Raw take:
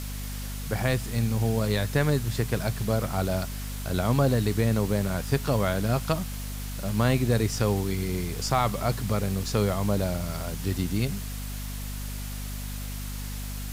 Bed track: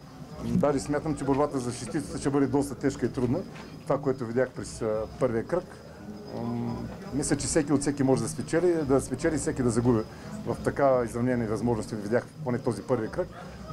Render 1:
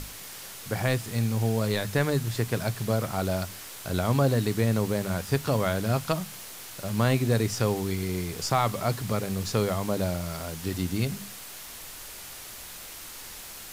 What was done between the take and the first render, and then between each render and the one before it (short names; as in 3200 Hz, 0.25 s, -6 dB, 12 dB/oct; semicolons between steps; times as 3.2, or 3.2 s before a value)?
notches 50/100/150/200/250 Hz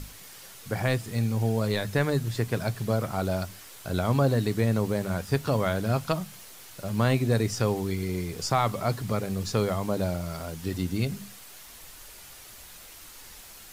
denoiser 6 dB, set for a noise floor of -42 dBFS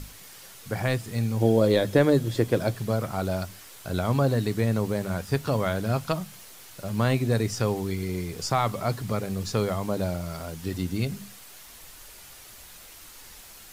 1.4–2.75 small resonant body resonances 330/510/3300 Hz, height 13 dB -> 9 dB, ringing for 25 ms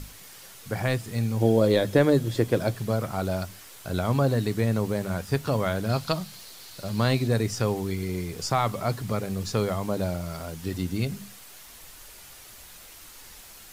5.89–7.28 bell 4300 Hz +9 dB 0.5 oct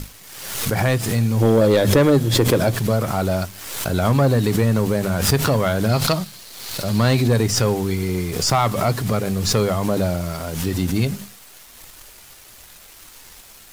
sample leveller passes 2; backwards sustainer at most 49 dB/s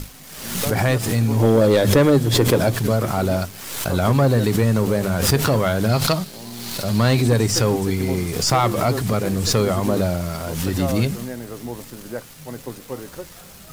add bed track -5 dB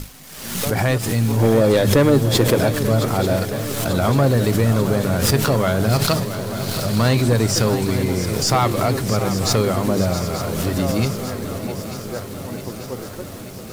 swung echo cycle 0.89 s, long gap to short 3:1, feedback 64%, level -11.5 dB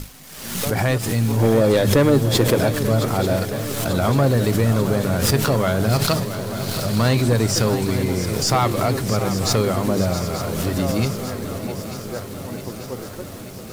gain -1 dB